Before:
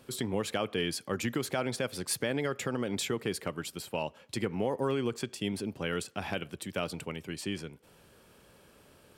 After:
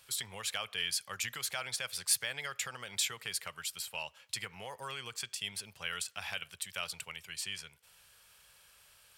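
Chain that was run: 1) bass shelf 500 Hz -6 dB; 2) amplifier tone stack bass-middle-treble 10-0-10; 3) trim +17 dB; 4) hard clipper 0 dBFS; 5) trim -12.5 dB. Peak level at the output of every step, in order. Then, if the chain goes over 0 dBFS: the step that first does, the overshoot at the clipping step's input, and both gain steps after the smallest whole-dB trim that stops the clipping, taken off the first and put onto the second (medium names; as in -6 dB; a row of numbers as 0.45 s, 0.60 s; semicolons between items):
-18.5 dBFS, -20.0 dBFS, -3.0 dBFS, -3.0 dBFS, -15.5 dBFS; nothing clips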